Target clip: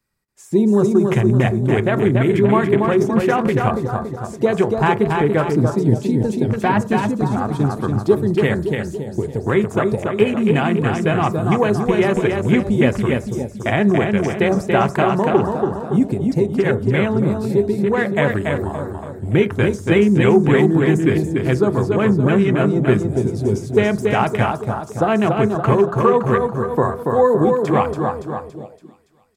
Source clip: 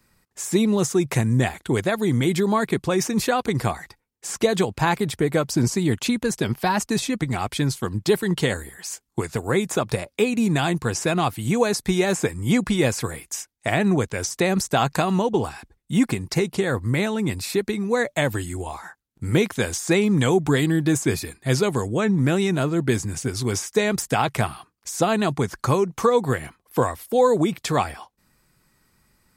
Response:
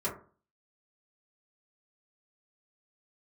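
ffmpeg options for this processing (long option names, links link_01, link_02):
-filter_complex "[0:a]aecho=1:1:283|566|849|1132|1415|1698|1981:0.631|0.341|0.184|0.0994|0.0537|0.029|0.0156,afwtdn=0.0398,asplit=2[link_01][link_02];[1:a]atrim=start_sample=2205[link_03];[link_02][link_03]afir=irnorm=-1:irlink=0,volume=-16.5dB[link_04];[link_01][link_04]amix=inputs=2:normalize=0,volume=2.5dB"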